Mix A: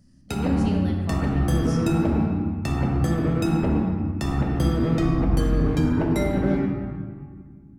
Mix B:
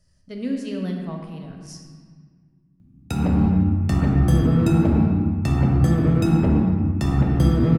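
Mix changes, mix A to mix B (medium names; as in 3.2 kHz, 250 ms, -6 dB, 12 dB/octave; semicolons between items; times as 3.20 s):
background: entry +2.80 s; master: add peaking EQ 120 Hz +6.5 dB 2.1 oct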